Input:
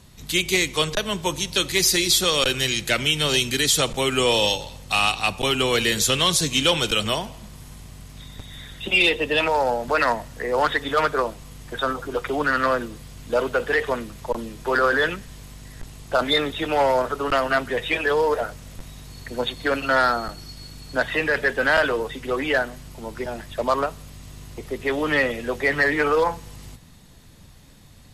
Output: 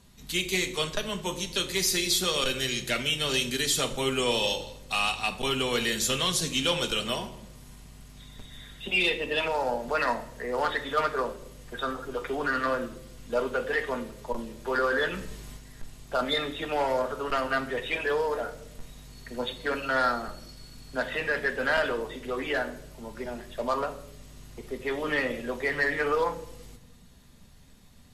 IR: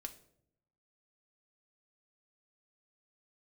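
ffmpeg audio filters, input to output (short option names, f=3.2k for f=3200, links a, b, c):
-filter_complex "[0:a]asplit=3[a][b][c];[a]afade=t=out:st=15.13:d=0.02[d];[b]acontrast=29,afade=t=in:st=15.13:d=0.02,afade=t=out:st=15.56:d=0.02[e];[c]afade=t=in:st=15.56:d=0.02[f];[d][e][f]amix=inputs=3:normalize=0[g];[1:a]atrim=start_sample=2205,asetrate=38367,aresample=44100[h];[g][h]afir=irnorm=-1:irlink=0,volume=-3.5dB"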